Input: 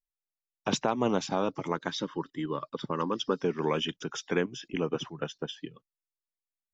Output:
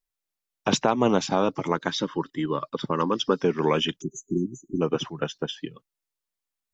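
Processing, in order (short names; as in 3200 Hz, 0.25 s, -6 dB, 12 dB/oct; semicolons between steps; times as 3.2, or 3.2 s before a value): spectral delete 4.01–4.81, 390–6000 Hz; gain +6 dB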